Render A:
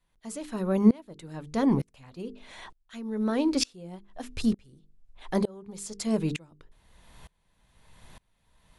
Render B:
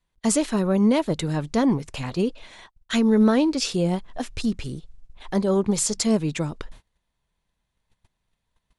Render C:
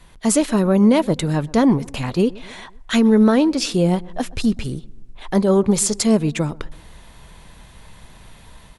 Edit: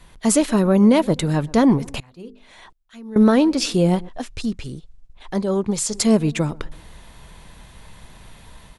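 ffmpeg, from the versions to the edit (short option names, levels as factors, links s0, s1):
-filter_complex "[2:a]asplit=3[s0][s1][s2];[s0]atrim=end=2.002[s3];[0:a]atrim=start=1.998:end=3.162[s4];[s1]atrim=start=3.158:end=4.092[s5];[1:a]atrim=start=4.088:end=5.942[s6];[s2]atrim=start=5.938[s7];[s3][s4]acrossfade=d=0.004:c1=hsin:c2=hsin[s8];[s8][s5]acrossfade=d=0.004:c1=hsin:c2=hsin[s9];[s9][s6]acrossfade=d=0.004:c1=hsin:c2=hsin[s10];[s10][s7]acrossfade=d=0.004:c1=hsin:c2=hsin"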